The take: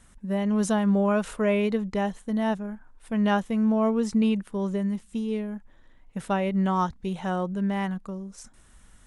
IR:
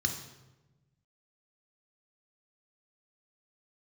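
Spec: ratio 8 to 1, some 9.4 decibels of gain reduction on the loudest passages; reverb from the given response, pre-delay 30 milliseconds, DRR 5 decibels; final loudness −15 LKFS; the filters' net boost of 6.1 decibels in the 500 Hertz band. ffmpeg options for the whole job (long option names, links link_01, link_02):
-filter_complex "[0:a]equalizer=frequency=500:width_type=o:gain=8,acompressor=threshold=-25dB:ratio=8,asplit=2[link_01][link_02];[1:a]atrim=start_sample=2205,adelay=30[link_03];[link_02][link_03]afir=irnorm=-1:irlink=0,volume=-10.5dB[link_04];[link_01][link_04]amix=inputs=2:normalize=0,volume=13dB"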